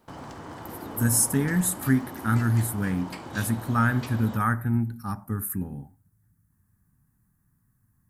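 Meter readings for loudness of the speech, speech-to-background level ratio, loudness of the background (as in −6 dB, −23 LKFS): −26.0 LKFS, 13.5 dB, −39.5 LKFS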